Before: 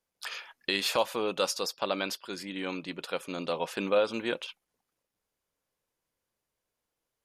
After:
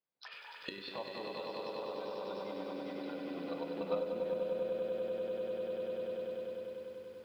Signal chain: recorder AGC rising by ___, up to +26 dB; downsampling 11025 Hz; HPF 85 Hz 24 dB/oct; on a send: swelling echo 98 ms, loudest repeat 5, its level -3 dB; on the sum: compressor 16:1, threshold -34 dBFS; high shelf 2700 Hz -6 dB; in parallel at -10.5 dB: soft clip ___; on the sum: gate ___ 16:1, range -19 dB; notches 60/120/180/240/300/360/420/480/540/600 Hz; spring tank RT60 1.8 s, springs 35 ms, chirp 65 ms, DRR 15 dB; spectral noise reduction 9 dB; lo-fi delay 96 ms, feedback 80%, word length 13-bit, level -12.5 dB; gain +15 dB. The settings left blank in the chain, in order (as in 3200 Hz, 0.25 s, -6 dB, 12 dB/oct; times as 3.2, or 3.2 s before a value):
22 dB/s, -33 dBFS, -32 dBFS